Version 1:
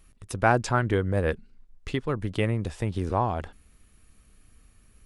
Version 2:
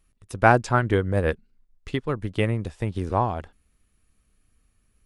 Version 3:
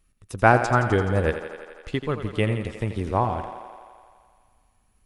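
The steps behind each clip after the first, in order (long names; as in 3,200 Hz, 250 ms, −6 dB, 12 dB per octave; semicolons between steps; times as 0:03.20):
expander for the loud parts 1.5 to 1, over −46 dBFS; level +5.5 dB
feedback echo with a high-pass in the loop 85 ms, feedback 77%, high-pass 200 Hz, level −10 dB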